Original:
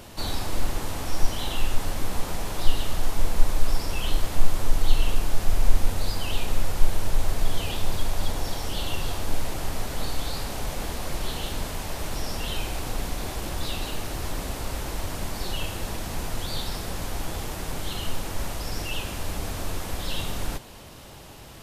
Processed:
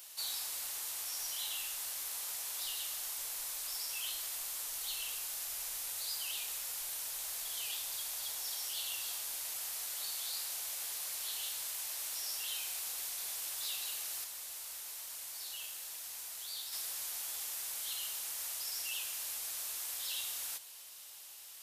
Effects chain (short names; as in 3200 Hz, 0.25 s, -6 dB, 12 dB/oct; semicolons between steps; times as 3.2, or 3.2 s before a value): differentiator; 14.24–16.73 flange 1.2 Hz, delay 5.6 ms, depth 8.6 ms, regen -70%; bell 230 Hz -9.5 dB 1.4 oct